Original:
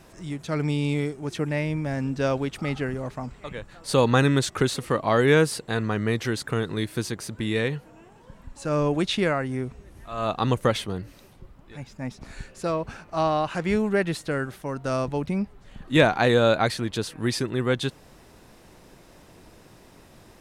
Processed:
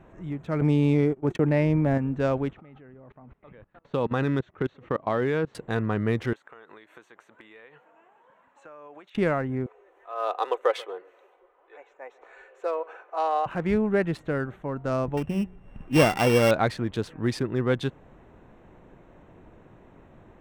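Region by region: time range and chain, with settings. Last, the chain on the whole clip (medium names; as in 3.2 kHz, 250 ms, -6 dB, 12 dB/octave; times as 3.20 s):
0.61–1.98 s: gate -34 dBFS, range -43 dB + peaking EQ 400 Hz +4.5 dB 2.8 oct + level flattener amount 50%
2.53–5.55 s: low-pass 5.2 kHz 24 dB/octave + bass shelf 64 Hz -10.5 dB + level held to a coarse grid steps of 24 dB
6.33–9.15 s: high-pass 750 Hz + compression 16:1, threshold -40 dBFS
9.66–13.46 s: elliptic high-pass 380 Hz + comb 4 ms, depth 39% + delay 132 ms -22 dB
15.17–16.51 s: sorted samples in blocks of 16 samples + de-hum 182.2 Hz, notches 2
whole clip: local Wiener filter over 9 samples; treble shelf 3 kHz -9.5 dB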